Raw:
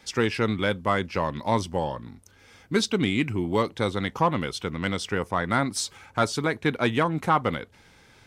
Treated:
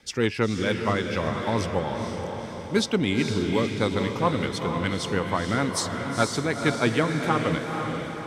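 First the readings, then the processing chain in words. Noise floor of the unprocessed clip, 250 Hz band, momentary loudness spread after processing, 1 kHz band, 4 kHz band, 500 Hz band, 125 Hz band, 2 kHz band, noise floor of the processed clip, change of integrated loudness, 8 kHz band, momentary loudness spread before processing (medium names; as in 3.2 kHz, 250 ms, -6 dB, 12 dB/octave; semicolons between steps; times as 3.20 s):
-56 dBFS, +2.0 dB, 6 LU, -1.5 dB, +1.0 dB, +1.5 dB, +2.0 dB, +0.5 dB, -36 dBFS, +0.5 dB, +1.0 dB, 6 LU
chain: rotary cabinet horn 6.7 Hz; echo that smears into a reverb 472 ms, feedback 55%, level -5 dB; trim +1.5 dB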